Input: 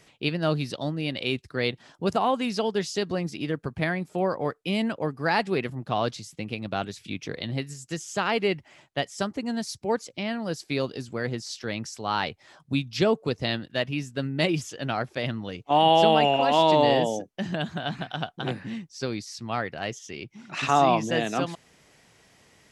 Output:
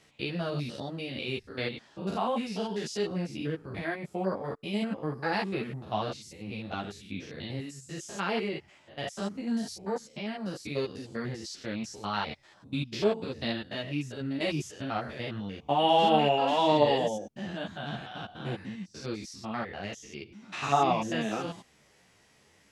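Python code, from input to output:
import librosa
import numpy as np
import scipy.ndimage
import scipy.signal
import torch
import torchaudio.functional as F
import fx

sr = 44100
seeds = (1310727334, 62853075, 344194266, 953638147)

y = fx.spec_steps(x, sr, hold_ms=100)
y = fx.ensemble(y, sr)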